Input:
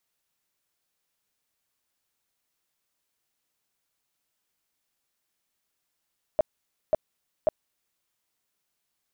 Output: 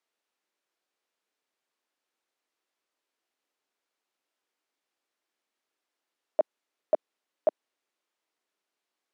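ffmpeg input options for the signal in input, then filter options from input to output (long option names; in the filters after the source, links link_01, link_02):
-f lavfi -i "aevalsrc='0.15*sin(2*PI*623*mod(t,0.54))*lt(mod(t,0.54),11/623)':duration=1.62:sample_rate=44100"
-af "highpass=frequency=300:width=0.5412,highpass=frequency=300:width=1.3066,aemphasis=mode=reproduction:type=bsi"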